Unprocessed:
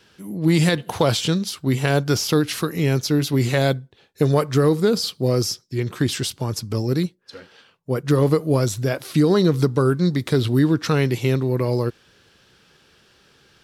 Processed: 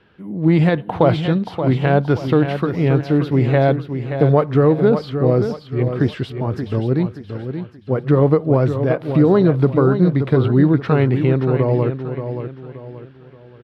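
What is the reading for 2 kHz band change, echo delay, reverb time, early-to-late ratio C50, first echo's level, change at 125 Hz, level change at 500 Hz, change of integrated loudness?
0.0 dB, 577 ms, no reverb, no reverb, -8.5 dB, +4.0 dB, +4.5 dB, +3.5 dB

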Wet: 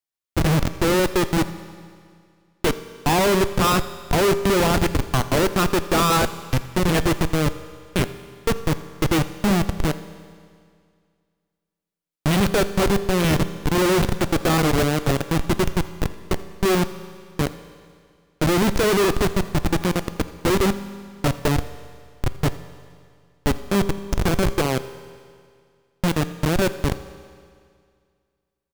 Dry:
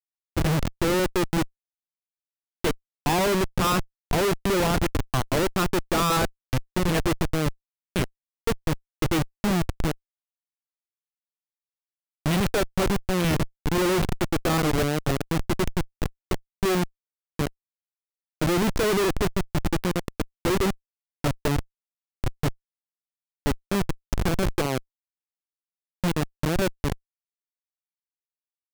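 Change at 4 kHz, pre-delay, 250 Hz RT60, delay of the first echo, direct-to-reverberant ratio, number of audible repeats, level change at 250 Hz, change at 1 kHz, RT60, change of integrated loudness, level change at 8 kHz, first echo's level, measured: +4.5 dB, 5 ms, 2.1 s, 83 ms, 11.5 dB, 1, +4.0 dB, +4.5 dB, 2.1 s, +4.5 dB, +4.0 dB, -21.0 dB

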